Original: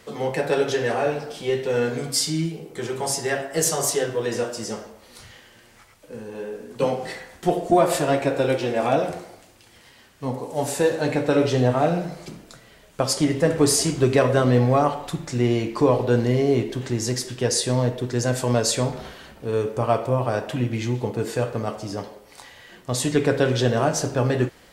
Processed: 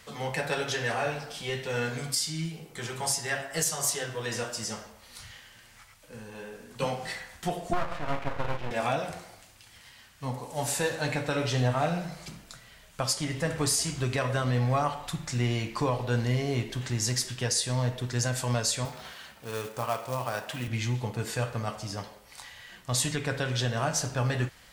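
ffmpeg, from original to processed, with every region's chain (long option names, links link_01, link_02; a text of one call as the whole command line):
ffmpeg -i in.wav -filter_complex "[0:a]asettb=1/sr,asplit=3[link_01][link_02][link_03];[link_01]atrim=end=7.734[link_04];[link_02]atrim=start=7.73:end=8.71,asetpts=PTS-STARTPTS,afade=type=in:duration=0.004:curve=qsin,afade=type=out:start_time=0.976:duration=0.004:curve=qsin,lowpass=1900,aeval=exprs='max(val(0),0)':channel_layout=same[link_05];[link_03]atrim=start=8.706[link_06];[link_04][link_05]acrossfade=duration=0.004:curve1=hsin:curve2=qsin[link_07];[link_07][link_06]acrossfade=duration=0.004:curve1=qsin:curve2=hsin,asettb=1/sr,asplit=3[link_08][link_09][link_10];[link_08]atrim=end=18.854[link_11];[link_09]atrim=start=18.85:end=20.68,asetpts=PTS-STARTPTS,afade=type=in:duration=0.004:curve=qsin,afade=type=out:start_time=1.826:duration=0.004:curve=qsin,highpass=frequency=280:poles=1,acrusher=bits=5:mode=log:mix=0:aa=0.000001[link_12];[link_10]atrim=start=20.676[link_13];[link_11][link_12]acrossfade=duration=0.004:curve1=hsin:curve2=qsin[link_14];[link_14][link_13]acrossfade=duration=0.004:curve1=qsin:curve2=hsin,equalizer=frequency=370:width=0.78:gain=-13,alimiter=limit=-16dB:level=0:latency=1:release=406" out.wav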